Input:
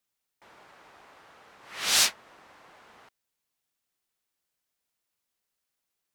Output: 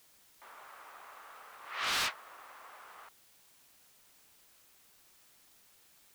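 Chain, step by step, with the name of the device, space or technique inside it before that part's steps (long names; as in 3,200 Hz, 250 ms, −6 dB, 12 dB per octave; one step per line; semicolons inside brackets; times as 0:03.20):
drive-through speaker (band-pass filter 530–3,500 Hz; parametric band 1,200 Hz +6.5 dB 0.54 octaves; hard clipping −29.5 dBFS, distortion −7 dB; white noise bed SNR 19 dB)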